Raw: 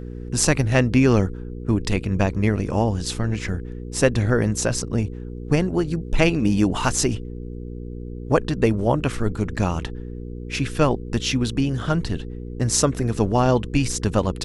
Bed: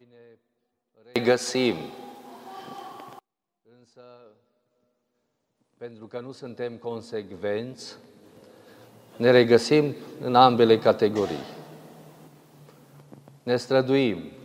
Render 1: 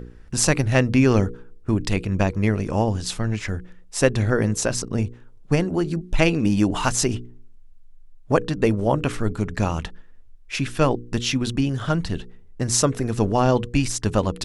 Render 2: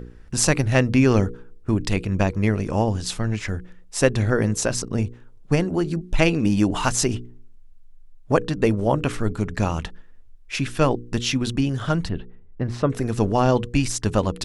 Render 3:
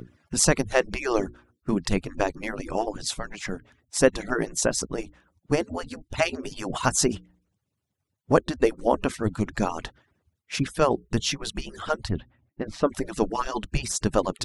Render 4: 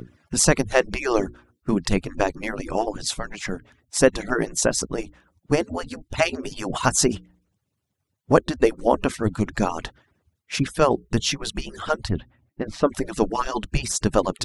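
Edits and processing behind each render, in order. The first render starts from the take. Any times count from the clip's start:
hum removal 60 Hz, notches 8
0:12.09–0:12.90: high-frequency loss of the air 410 metres
harmonic-percussive split with one part muted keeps percussive; dynamic equaliser 2,500 Hz, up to −5 dB, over −42 dBFS, Q 2
level +3 dB; brickwall limiter −1 dBFS, peak gain reduction 2.5 dB

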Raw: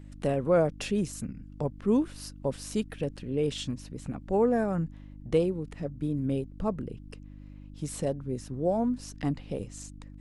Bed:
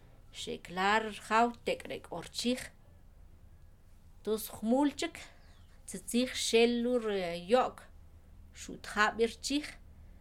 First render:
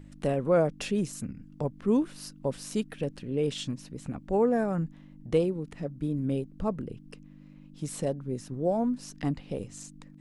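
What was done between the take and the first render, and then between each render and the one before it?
hum removal 50 Hz, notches 2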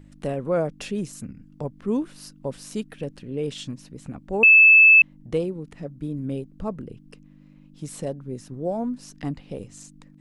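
0:04.43–0:05.02: beep over 2,620 Hz −8.5 dBFS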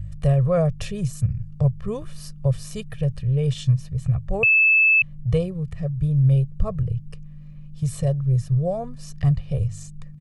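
low shelf with overshoot 170 Hz +13 dB, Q 3
comb filter 1.7 ms, depth 64%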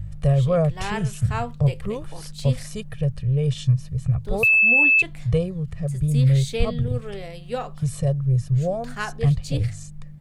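mix in bed −1.5 dB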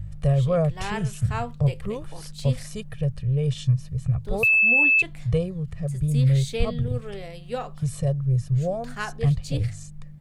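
level −2 dB

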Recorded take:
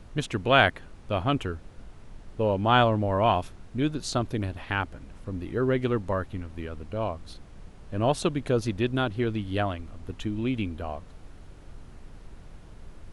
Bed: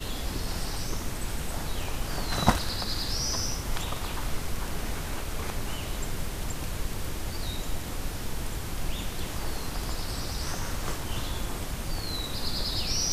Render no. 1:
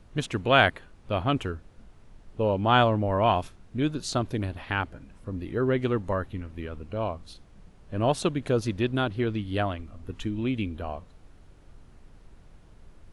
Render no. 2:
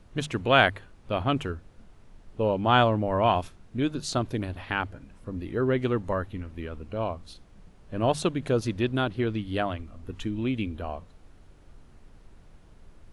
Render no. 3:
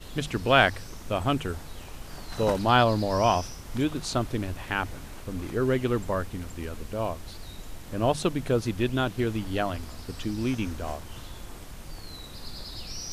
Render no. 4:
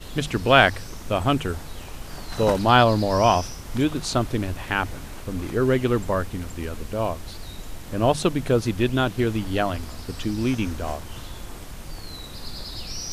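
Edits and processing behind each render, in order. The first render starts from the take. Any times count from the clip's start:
noise reduction from a noise print 6 dB
mains-hum notches 50/100/150 Hz
mix in bed −9.5 dB
level +4.5 dB; brickwall limiter −1 dBFS, peak gain reduction 1 dB

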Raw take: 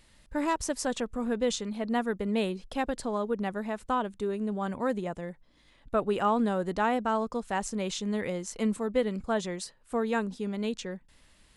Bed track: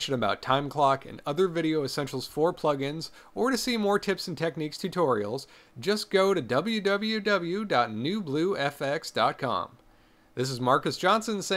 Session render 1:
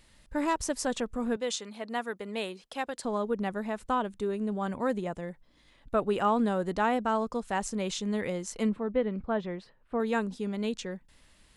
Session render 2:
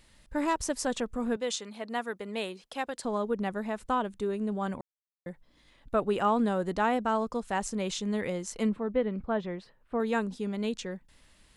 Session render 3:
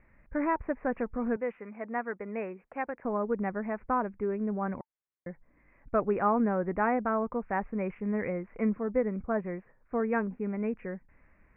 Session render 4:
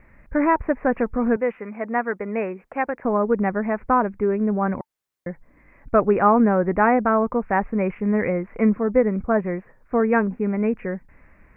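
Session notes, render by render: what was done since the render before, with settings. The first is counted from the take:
0:01.36–0:03.05: high-pass filter 670 Hz 6 dB per octave; 0:08.69–0:10.00: high-frequency loss of the air 390 metres
0:04.81–0:05.26: silence
Butterworth low-pass 2,400 Hz 96 dB per octave; notch filter 890 Hz, Q 23
level +10 dB

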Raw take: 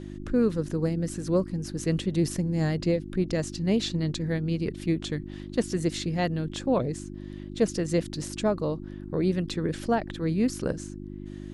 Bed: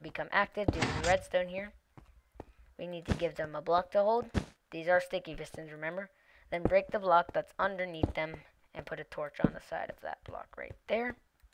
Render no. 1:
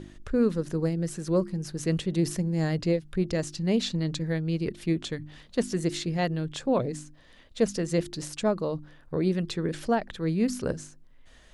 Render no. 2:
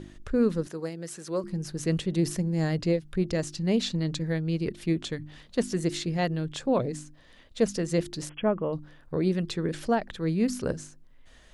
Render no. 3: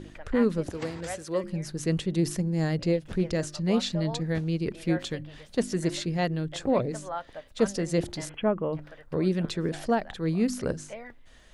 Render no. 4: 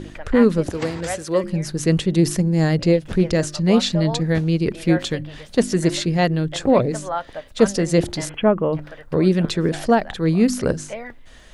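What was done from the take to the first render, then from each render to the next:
hum removal 50 Hz, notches 7
0:00.67–0:01.44: high-pass filter 620 Hz 6 dB per octave; 0:08.29–0:08.73: linear-phase brick-wall low-pass 3,400 Hz
mix in bed −9 dB
level +9 dB

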